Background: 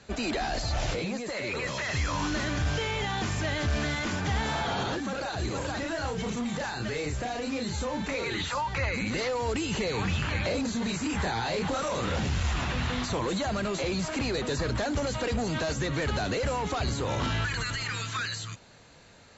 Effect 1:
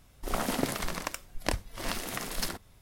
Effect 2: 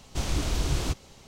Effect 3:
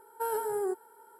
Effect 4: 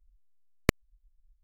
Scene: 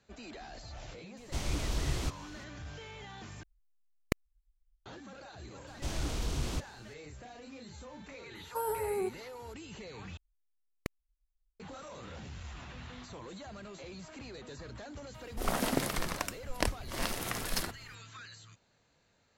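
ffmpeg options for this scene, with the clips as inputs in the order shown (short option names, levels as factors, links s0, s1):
-filter_complex "[2:a]asplit=2[s0][s1];[4:a]asplit=2[s2][s3];[0:a]volume=0.141[s4];[s1]asoftclip=type=tanh:threshold=0.168[s5];[3:a]equalizer=f=1900:t=o:w=1.2:g=-4.5[s6];[s4]asplit=3[s7][s8][s9];[s7]atrim=end=3.434[s10];[s2]atrim=end=1.43,asetpts=PTS-STARTPTS,volume=0.398[s11];[s8]atrim=start=4.856:end=10.174[s12];[s3]atrim=end=1.43,asetpts=PTS-STARTPTS,volume=0.178[s13];[s9]atrim=start=11.596[s14];[s0]atrim=end=1.27,asetpts=PTS-STARTPTS,volume=0.501,afade=t=in:d=0.004:c=hsin,afade=t=out:st=1.266:d=0.004:c=hsin,adelay=1170[s15];[s5]atrim=end=1.27,asetpts=PTS-STARTPTS,volume=0.473,afade=t=in:d=0.004:c=hsin,afade=t=out:st=1.266:d=0.004:c=hsin,adelay=5670[s16];[s6]atrim=end=1.19,asetpts=PTS-STARTPTS,volume=0.794,afade=t=in:d=0.004:c=hsin,afade=t=out:st=1.186:d=0.004:c=hsin,adelay=8350[s17];[1:a]atrim=end=2.81,asetpts=PTS-STARTPTS,volume=0.891,afade=t=in:d=0.004:c=hsin,afade=t=out:st=2.806:d=0.004:c=hsin,adelay=15140[s18];[s10][s11]acrossfade=d=0.004:c1=hsin:c2=hsin[s19];[s19][s12]acrossfade=d=0.004:c1=hsin:c2=hsin[s20];[s20][s13]acrossfade=d=0.004:c1=hsin:c2=hsin[s21];[s21][s14]acrossfade=d=0.004:c1=hsin:c2=hsin[s22];[s22][s15][s16][s17][s18]amix=inputs=5:normalize=0"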